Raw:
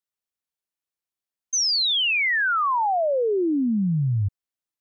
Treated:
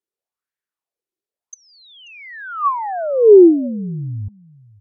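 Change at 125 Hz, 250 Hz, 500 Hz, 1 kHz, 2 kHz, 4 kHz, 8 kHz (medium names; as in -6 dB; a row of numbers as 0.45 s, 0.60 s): -3.0 dB, +8.5 dB, +12.5 dB, +1.0 dB, -12.0 dB, under -20 dB, no reading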